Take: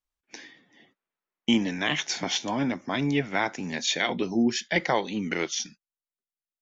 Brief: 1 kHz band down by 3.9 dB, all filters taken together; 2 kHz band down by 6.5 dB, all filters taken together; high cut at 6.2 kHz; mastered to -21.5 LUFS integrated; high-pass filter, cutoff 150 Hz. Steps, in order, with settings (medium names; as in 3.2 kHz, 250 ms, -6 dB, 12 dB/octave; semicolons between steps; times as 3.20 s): high-pass 150 Hz; low-pass 6.2 kHz; peaking EQ 1 kHz -4 dB; peaking EQ 2 kHz -6.5 dB; trim +8 dB